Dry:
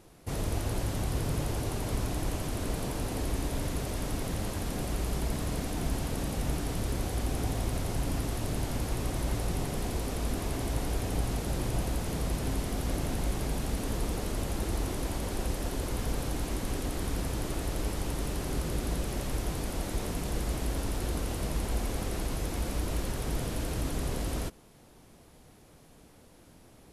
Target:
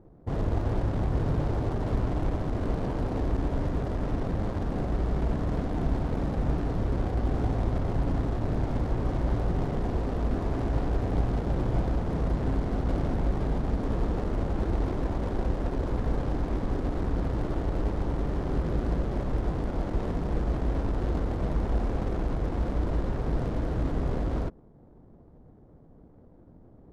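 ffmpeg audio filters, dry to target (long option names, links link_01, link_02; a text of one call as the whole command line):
ffmpeg -i in.wav -af "equalizer=frequency=2600:width=3.1:gain=-11.5,adynamicsmooth=sensitivity=7:basefreq=530,volume=4.5dB" out.wav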